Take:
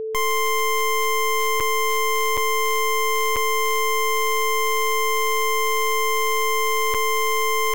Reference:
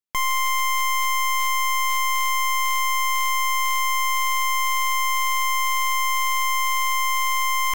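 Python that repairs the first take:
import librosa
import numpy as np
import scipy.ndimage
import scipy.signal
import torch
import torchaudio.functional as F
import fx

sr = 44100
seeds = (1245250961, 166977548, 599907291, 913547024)

y = fx.notch(x, sr, hz=440.0, q=30.0)
y = fx.fix_interpolate(y, sr, at_s=(1.6, 2.37, 3.36, 6.94), length_ms=5.6)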